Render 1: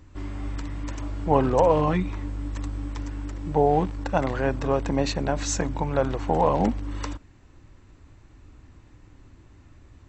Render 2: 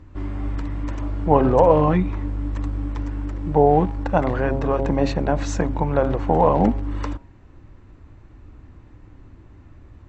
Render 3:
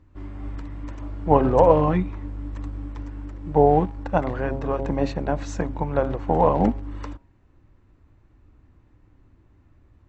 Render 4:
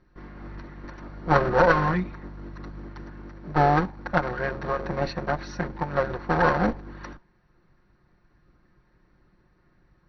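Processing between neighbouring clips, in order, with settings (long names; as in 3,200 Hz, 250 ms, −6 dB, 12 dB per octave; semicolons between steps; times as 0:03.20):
low-pass filter 1,500 Hz 6 dB per octave; hum removal 136 Hz, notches 7; level +5.5 dB
expander for the loud parts 1.5 to 1, over −32 dBFS
lower of the sound and its delayed copy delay 5.6 ms; log-companded quantiser 8 bits; Chebyshev low-pass with heavy ripple 5,900 Hz, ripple 9 dB; level +5 dB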